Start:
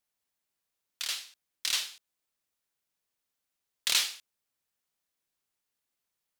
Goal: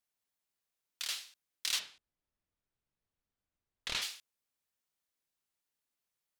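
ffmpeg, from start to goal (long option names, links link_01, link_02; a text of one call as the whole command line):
ffmpeg -i in.wav -filter_complex "[0:a]asplit=3[link_01][link_02][link_03];[link_01]afade=type=out:start_time=1.78:duration=0.02[link_04];[link_02]aemphasis=mode=reproduction:type=riaa,afade=type=in:start_time=1.78:duration=0.02,afade=type=out:start_time=4.01:duration=0.02[link_05];[link_03]afade=type=in:start_time=4.01:duration=0.02[link_06];[link_04][link_05][link_06]amix=inputs=3:normalize=0,volume=-4dB" out.wav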